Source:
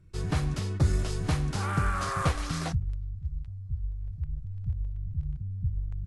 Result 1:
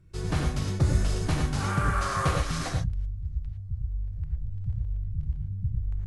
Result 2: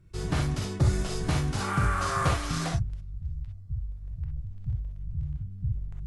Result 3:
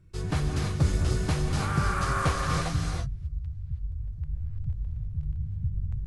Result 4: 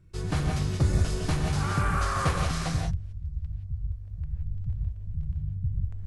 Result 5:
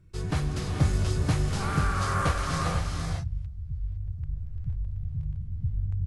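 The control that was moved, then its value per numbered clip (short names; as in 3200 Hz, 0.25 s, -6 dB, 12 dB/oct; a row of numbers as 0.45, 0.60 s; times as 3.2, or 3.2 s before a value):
non-linear reverb, gate: 130, 80, 350, 200, 530 ms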